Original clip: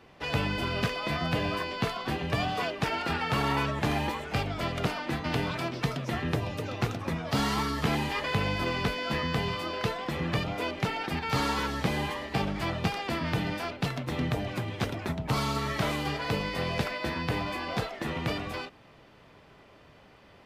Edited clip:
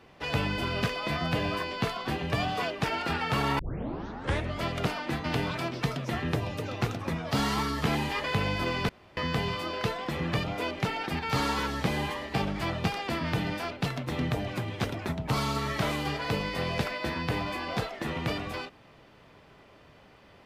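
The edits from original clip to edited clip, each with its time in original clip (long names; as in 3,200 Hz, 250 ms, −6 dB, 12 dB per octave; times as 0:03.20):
0:03.59: tape start 1.04 s
0:08.89–0:09.17: fill with room tone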